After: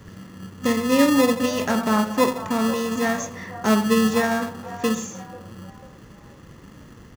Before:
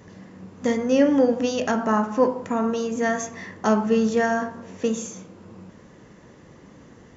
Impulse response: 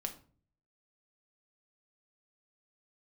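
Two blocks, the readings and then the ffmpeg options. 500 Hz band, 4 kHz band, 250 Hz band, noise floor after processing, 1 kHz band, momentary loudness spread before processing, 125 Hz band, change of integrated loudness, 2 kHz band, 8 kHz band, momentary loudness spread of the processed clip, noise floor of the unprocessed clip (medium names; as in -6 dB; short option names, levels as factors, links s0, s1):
-1.0 dB, +8.0 dB, +2.0 dB, -46 dBFS, +1.5 dB, 10 LU, +3.5 dB, +1.5 dB, +3.0 dB, no reading, 21 LU, -49 dBFS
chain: -filter_complex "[0:a]lowshelf=f=120:g=11.5,acrossover=split=550|1500[s0][s1][s2];[s0]acrusher=samples=29:mix=1:aa=0.000001[s3];[s1]asplit=6[s4][s5][s6][s7][s8][s9];[s5]adelay=492,afreqshift=32,volume=0.355[s10];[s6]adelay=984,afreqshift=64,volume=0.146[s11];[s7]adelay=1476,afreqshift=96,volume=0.0596[s12];[s8]adelay=1968,afreqshift=128,volume=0.0245[s13];[s9]adelay=2460,afreqshift=160,volume=0.01[s14];[s4][s10][s11][s12][s13][s14]amix=inputs=6:normalize=0[s15];[s3][s15][s2]amix=inputs=3:normalize=0"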